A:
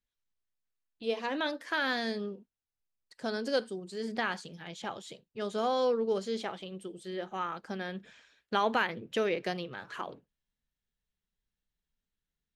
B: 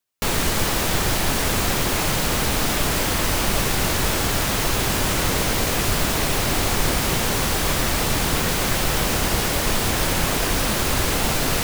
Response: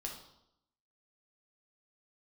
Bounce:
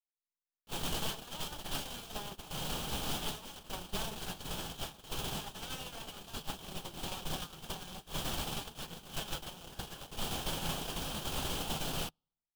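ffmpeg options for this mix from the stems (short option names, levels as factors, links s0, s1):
-filter_complex "[0:a]acompressor=threshold=0.0251:ratio=4,aeval=exprs='(mod(56.2*val(0)+1,2)-1)/56.2':c=same,volume=1.06,asplit=3[s0][s1][s2];[s1]volume=0.224[s3];[1:a]adelay=450,volume=0.224,asplit=2[s4][s5];[s5]volume=0.237[s6];[s2]apad=whole_len=533120[s7];[s4][s7]sidechaincompress=threshold=0.00794:ratio=5:attack=41:release=443[s8];[2:a]atrim=start_sample=2205[s9];[s3][s6]amix=inputs=2:normalize=0[s10];[s10][s9]afir=irnorm=-1:irlink=0[s11];[s0][s8][s11]amix=inputs=3:normalize=0,agate=range=0.0282:threshold=0.0282:ratio=16:detection=peak,equalizer=f=100:t=o:w=0.33:g=-4,equalizer=f=160:t=o:w=0.33:g=6,equalizer=f=800:t=o:w=0.33:g=5,equalizer=f=2000:t=o:w=0.33:g=-10,equalizer=f=3150:t=o:w=0.33:g=10,asoftclip=type=tanh:threshold=0.0422"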